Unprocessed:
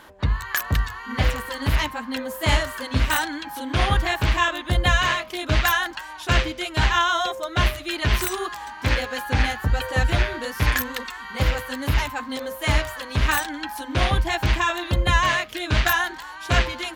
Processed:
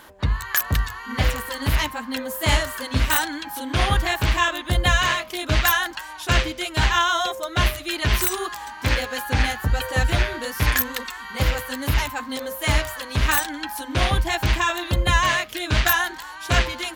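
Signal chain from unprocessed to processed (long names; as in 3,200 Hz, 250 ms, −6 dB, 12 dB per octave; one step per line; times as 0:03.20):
high-shelf EQ 6,500 Hz +7.5 dB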